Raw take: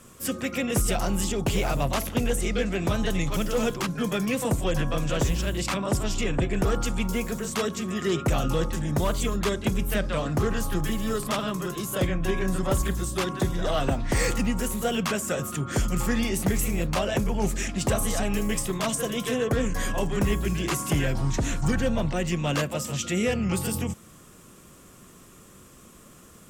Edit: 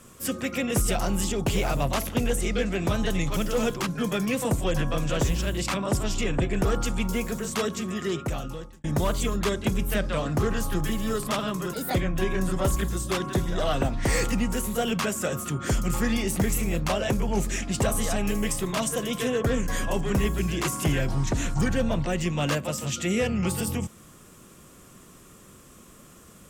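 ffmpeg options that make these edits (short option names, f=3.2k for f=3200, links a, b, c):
-filter_complex "[0:a]asplit=4[a][b][c][d];[a]atrim=end=8.84,asetpts=PTS-STARTPTS,afade=t=out:st=7.8:d=1.04[e];[b]atrim=start=8.84:end=11.734,asetpts=PTS-STARTPTS,afade=t=in:d=0.004:c=hsin[f];[c]atrim=start=11.73:end=12.01,asetpts=PTS-STARTPTS,asetrate=57771,aresample=44100[g];[d]atrim=start=12.006[h];[e][f]concat=n=2:v=0:a=1[i];[i][g]acrossfade=d=0.004:c1=hsin:c2=hsin[j];[j][h]acrossfade=d=0.004:c1=hsin:c2=hsin"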